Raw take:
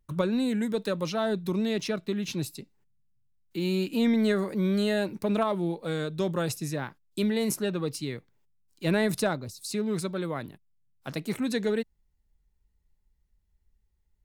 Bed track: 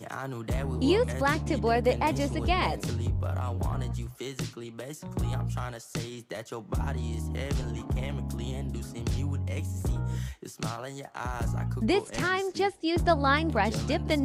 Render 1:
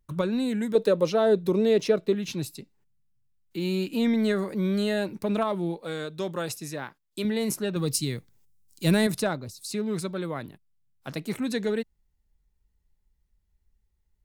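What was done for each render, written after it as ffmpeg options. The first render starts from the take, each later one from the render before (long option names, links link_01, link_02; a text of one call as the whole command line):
ffmpeg -i in.wav -filter_complex "[0:a]asettb=1/sr,asplit=3[link_01][link_02][link_03];[link_01]atrim=end=0.754[link_04];[link_02]atrim=start=0.75:end=2.15,asetpts=PTS-STARTPTS,afade=type=in:duration=0.004:curve=qsin,afade=type=out:start_time=1.396:duration=0.004:curve=qsin,equalizer=frequency=470:width_type=o:width=0.95:gain=11.5[link_05];[link_03]atrim=start=2.146[link_06];[link_04][link_05]acrossfade=duration=0.004:curve1=hsin:curve2=qsin[link_07];[link_07][link_06]acrossfade=duration=0.004:curve1=qsin:curve2=hsin,asettb=1/sr,asplit=3[link_08][link_09][link_10];[link_08]atrim=end=5.774[link_11];[link_09]atrim=start=5.77:end=7.25,asetpts=PTS-STARTPTS,afade=type=in:duration=0.004:curve=qsin,afade=type=out:start_time=1.476:duration=0.004:curve=qsin,lowshelf=frequency=210:gain=-10[link_12];[link_10]atrim=start=7.246[link_13];[link_11][link_12]acrossfade=duration=0.004:curve1=hsin:curve2=qsin[link_14];[link_14][link_13]acrossfade=duration=0.004:curve1=qsin:curve2=hsin,asettb=1/sr,asplit=3[link_15][link_16][link_17];[link_15]atrim=end=7.764[link_18];[link_16]atrim=start=7.76:end=9.07,asetpts=PTS-STARTPTS,afade=type=in:duration=0.004:curve=qsin,afade=type=out:start_time=1.306:duration=0.004:curve=qsin,bass=frequency=250:gain=7,treble=frequency=4000:gain=13[link_19];[link_17]atrim=start=9.066[link_20];[link_18][link_19]acrossfade=duration=0.004:curve1=hsin:curve2=qsin[link_21];[link_21][link_20]acrossfade=duration=0.004:curve1=qsin:curve2=hsin" out.wav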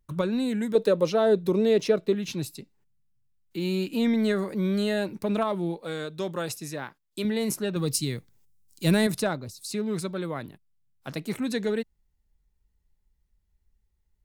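ffmpeg -i in.wav -af anull out.wav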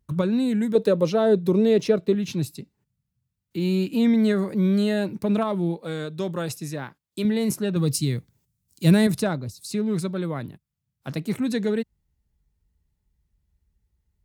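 ffmpeg -i in.wav -af "highpass=77,lowshelf=frequency=200:gain=11.5" out.wav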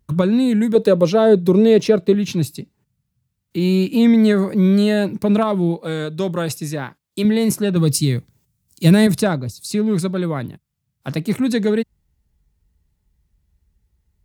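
ffmpeg -i in.wav -af "volume=6.5dB,alimiter=limit=-3dB:level=0:latency=1" out.wav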